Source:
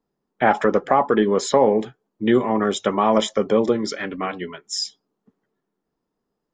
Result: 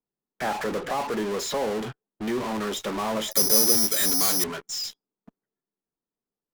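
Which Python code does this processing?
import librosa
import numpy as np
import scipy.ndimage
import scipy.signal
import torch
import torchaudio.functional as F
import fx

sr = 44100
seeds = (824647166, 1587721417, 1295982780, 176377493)

p1 = fx.fuzz(x, sr, gain_db=44.0, gate_db=-53.0)
p2 = x + (p1 * librosa.db_to_amplitude(-3.5))
p3 = fx.resample_bad(p2, sr, factor=8, down='filtered', up='zero_stuff', at=(3.31, 4.44))
y = p3 * librosa.db_to_amplitude(-15.5)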